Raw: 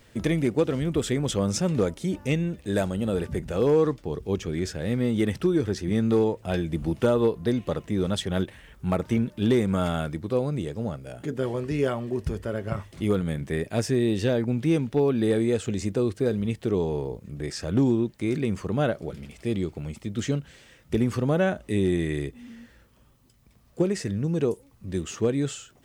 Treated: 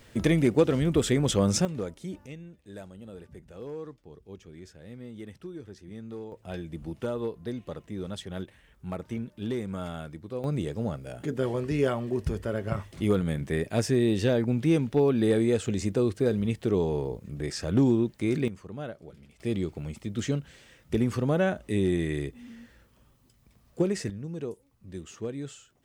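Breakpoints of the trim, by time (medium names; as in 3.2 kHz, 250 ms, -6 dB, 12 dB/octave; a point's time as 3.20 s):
+1.5 dB
from 1.65 s -9.5 dB
from 2.26 s -18 dB
from 6.32 s -10 dB
from 10.44 s -0.5 dB
from 18.48 s -13 dB
from 19.40 s -2 dB
from 24.10 s -10.5 dB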